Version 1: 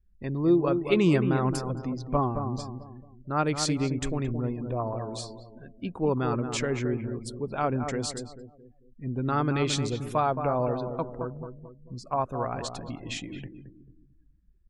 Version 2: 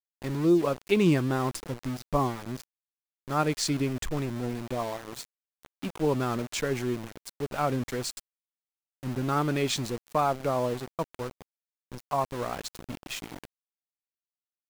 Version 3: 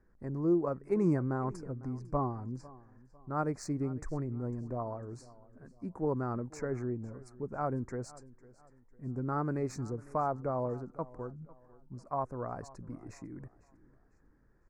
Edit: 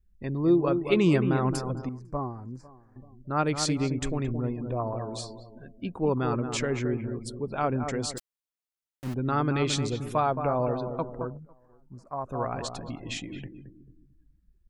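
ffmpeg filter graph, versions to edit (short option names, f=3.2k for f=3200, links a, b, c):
-filter_complex "[2:a]asplit=2[a][b];[0:a]asplit=4[c][d][e][f];[c]atrim=end=1.892[g];[a]atrim=start=1.888:end=2.962[h];[d]atrim=start=2.958:end=8.182[i];[1:a]atrim=start=8.178:end=9.142[j];[e]atrim=start=9.138:end=11.4[k];[b]atrim=start=11.36:end=12.28[l];[f]atrim=start=12.24[m];[g][h]acrossfade=d=0.004:c1=hsin:c2=hsin[n];[n][i]acrossfade=d=0.004:c1=hsin:c2=hsin[o];[o][j]acrossfade=d=0.004:c1=hsin:c2=hsin[p];[p][k]acrossfade=d=0.004:c1=hsin:c2=hsin[q];[q][l]acrossfade=d=0.04:c1=tri:c2=tri[r];[r][m]acrossfade=d=0.04:c1=tri:c2=tri"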